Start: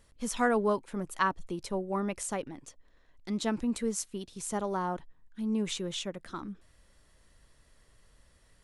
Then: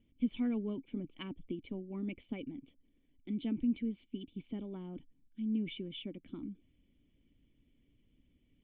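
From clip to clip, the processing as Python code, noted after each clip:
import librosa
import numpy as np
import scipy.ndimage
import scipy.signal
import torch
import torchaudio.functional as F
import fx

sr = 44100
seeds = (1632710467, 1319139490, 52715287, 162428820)

y = fx.hpss(x, sr, part='percussive', gain_db=7)
y = fx.formant_cascade(y, sr, vowel='i')
y = y * librosa.db_to_amplitude(2.0)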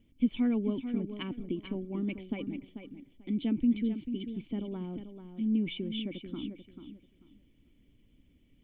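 y = fx.echo_feedback(x, sr, ms=440, feedback_pct=21, wet_db=-9.5)
y = y * librosa.db_to_amplitude(5.5)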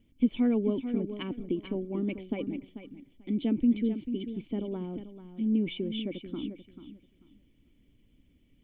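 y = fx.dynamic_eq(x, sr, hz=490.0, q=0.99, threshold_db=-46.0, ratio=4.0, max_db=7)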